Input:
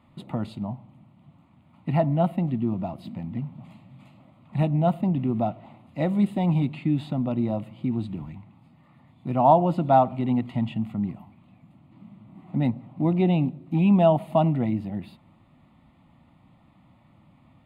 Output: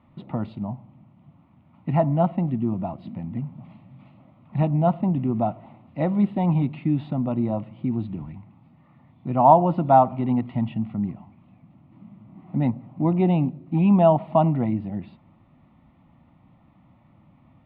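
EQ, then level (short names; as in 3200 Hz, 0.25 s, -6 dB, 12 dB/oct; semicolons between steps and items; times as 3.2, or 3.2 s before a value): dynamic EQ 1000 Hz, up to +5 dB, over -39 dBFS, Q 1.8; air absorption 320 m; +1.5 dB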